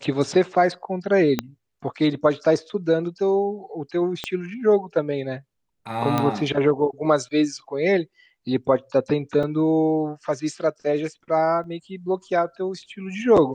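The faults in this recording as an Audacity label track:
1.390000	1.390000	click −8 dBFS
4.240000	4.240000	click −12 dBFS
6.180000	6.180000	click −9 dBFS
9.430000	9.430000	drop-out 3.7 ms
11.640000	11.640000	drop-out 2.3 ms

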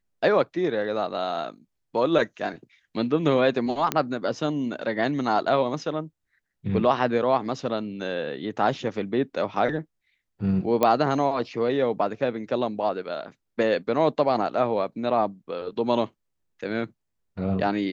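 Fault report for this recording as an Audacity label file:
3.920000	3.920000	click −7 dBFS
10.830000	10.830000	click −8 dBFS

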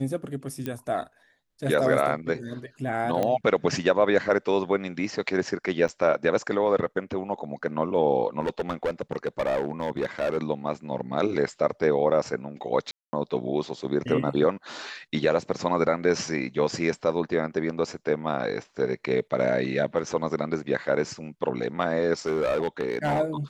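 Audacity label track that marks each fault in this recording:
0.660000	0.660000	click −18 dBFS
3.230000	3.230000	click −14 dBFS
5.880000	5.890000	drop-out 7.2 ms
8.400000	10.380000	clipping −21.5 dBFS
12.910000	13.130000	drop-out 220 ms
22.260000	23.210000	clipping −20.5 dBFS

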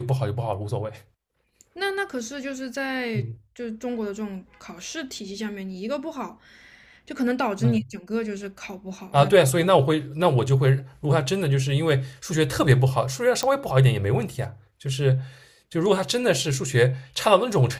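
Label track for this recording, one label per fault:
13.430000	13.430000	click −10 dBFS

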